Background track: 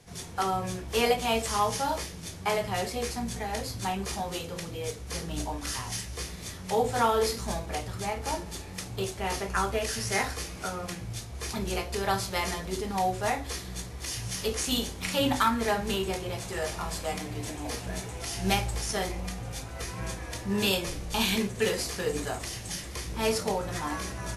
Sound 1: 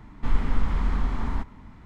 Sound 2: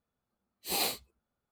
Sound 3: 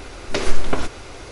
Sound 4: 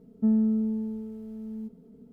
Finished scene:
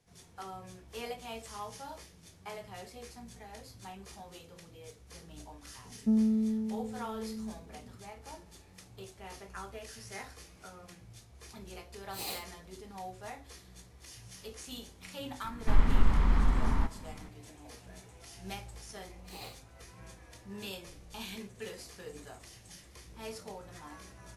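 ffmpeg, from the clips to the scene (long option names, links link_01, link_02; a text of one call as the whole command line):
ffmpeg -i bed.wav -i cue0.wav -i cue1.wav -i cue2.wav -i cue3.wav -filter_complex "[2:a]asplit=2[link_01][link_02];[0:a]volume=-16dB[link_03];[link_02]highshelf=frequency=5800:gain=-11.5[link_04];[4:a]atrim=end=2.12,asetpts=PTS-STARTPTS,volume=-3.5dB,afade=type=in:duration=0.004:curve=hsin,afade=type=out:start_time=2.116:duration=0.004:curve=hsin,adelay=5840[link_05];[link_01]atrim=end=1.51,asetpts=PTS-STARTPTS,volume=-8.5dB,afade=type=in:duration=0.004:curve=hsin,afade=type=out:start_time=1.506:duration=0.004:curve=hsin,adelay=11470[link_06];[1:a]atrim=end=1.85,asetpts=PTS-STARTPTS,volume=-1dB,afade=type=in:duration=0.004:curve=hsin,afade=type=out:start_time=1.846:duration=0.004:curve=hsin,adelay=15440[link_07];[link_04]atrim=end=1.51,asetpts=PTS-STARTPTS,volume=-12.5dB,afade=type=in:duration=0.004:curve=hsin,afade=type=out:start_time=1.506:duration=0.004:curve=hsin,adelay=18610[link_08];[link_03][link_05][link_06][link_07][link_08]amix=inputs=5:normalize=0" out.wav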